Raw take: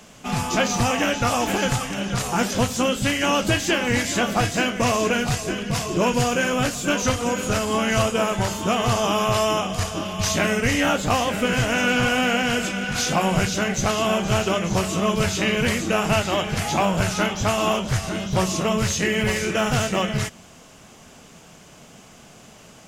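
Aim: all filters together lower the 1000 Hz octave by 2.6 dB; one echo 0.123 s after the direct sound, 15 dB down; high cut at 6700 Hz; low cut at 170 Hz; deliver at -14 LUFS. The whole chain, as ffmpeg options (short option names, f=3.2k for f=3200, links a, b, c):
-af "highpass=170,lowpass=6.7k,equalizer=f=1k:t=o:g=-3.5,aecho=1:1:123:0.178,volume=9dB"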